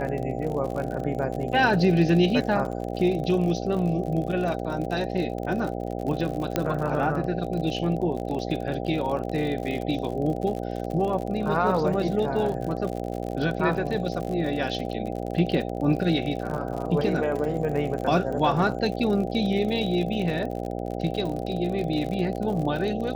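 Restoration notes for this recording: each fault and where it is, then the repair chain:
buzz 60 Hz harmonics 13 -31 dBFS
crackle 55/s -31 dBFS
6.56 pop -9 dBFS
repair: de-click; de-hum 60 Hz, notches 13

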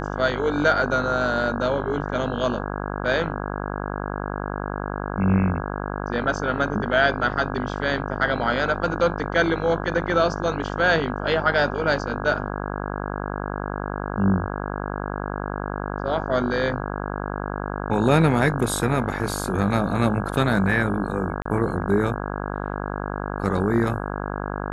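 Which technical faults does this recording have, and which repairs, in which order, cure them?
buzz 50 Hz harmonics 33 -29 dBFS
21.42–21.45 gap 34 ms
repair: de-hum 50 Hz, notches 33; interpolate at 21.42, 34 ms

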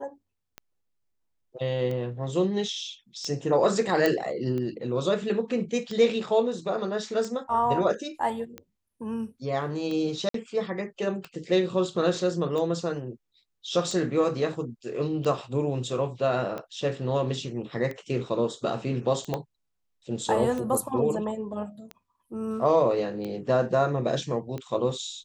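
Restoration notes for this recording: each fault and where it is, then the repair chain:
tick 45 rpm -22 dBFS
4.06 pop -10 dBFS
10.29–10.34 gap 53 ms
19.34 pop -15 dBFS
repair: de-click; interpolate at 10.29, 53 ms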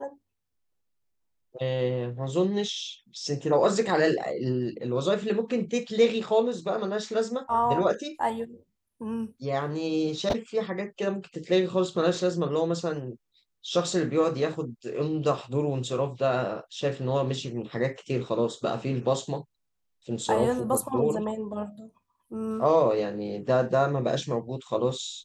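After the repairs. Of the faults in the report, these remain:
19.34 pop

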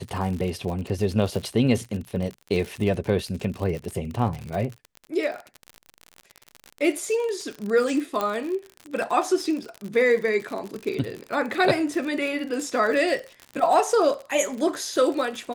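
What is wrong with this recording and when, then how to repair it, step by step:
crackle 58/s -29 dBFS
8.21 pop -12 dBFS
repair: de-click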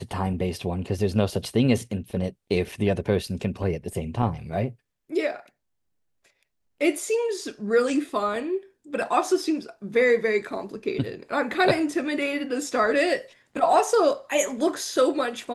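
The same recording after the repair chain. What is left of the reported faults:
none

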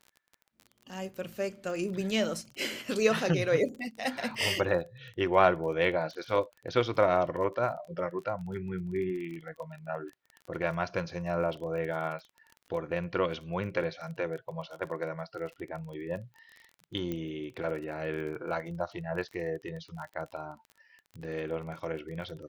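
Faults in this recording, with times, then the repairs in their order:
crackle 26/s -39 dBFS
17.12 pop -22 dBFS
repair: de-click

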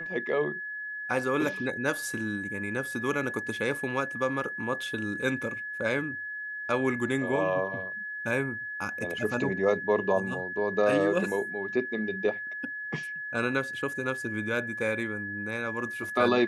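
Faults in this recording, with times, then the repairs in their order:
tone 1700 Hz -34 dBFS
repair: notch 1700 Hz, Q 30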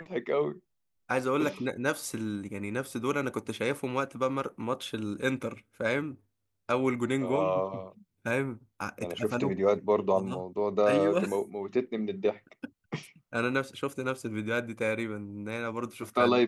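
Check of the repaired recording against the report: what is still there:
none

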